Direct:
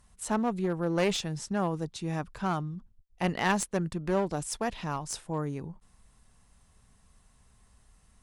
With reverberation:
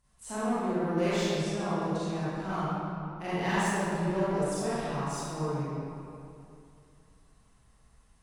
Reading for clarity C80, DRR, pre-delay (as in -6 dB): -3.5 dB, -12.0 dB, 30 ms